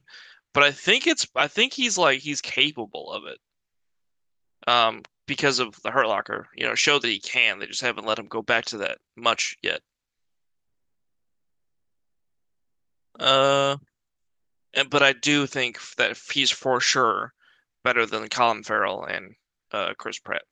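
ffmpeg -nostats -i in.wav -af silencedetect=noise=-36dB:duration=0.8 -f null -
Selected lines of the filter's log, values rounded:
silence_start: 3.36
silence_end: 4.63 | silence_duration: 1.27
silence_start: 9.77
silence_end: 13.20 | silence_duration: 3.42
silence_start: 13.78
silence_end: 14.74 | silence_duration: 0.96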